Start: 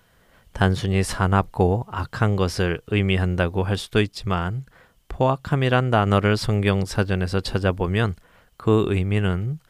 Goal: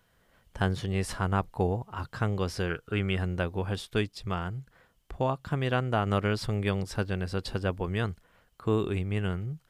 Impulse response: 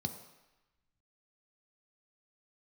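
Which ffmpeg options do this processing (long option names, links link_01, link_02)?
-filter_complex "[0:a]asettb=1/sr,asplit=3[link_01][link_02][link_03];[link_01]atrim=end=2.704[link_04];[link_02]atrim=start=2.7:end=3.16,asetpts=PTS-STARTPTS,afade=type=in:duration=0.004:curve=qsin,afade=type=out:start_time=0.456:duration=0.004:curve=qsin,equalizer=frequency=1400:width=5.6:gain=14[link_05];[link_03]atrim=start=3.156[link_06];[link_04][link_05]acrossfade=duration=0.004:curve1=hsin:curve2=qsin[link_07];[link_07][link_06]acrossfade=duration=0.004:curve1=qsin:curve2=hsin,volume=-8.5dB"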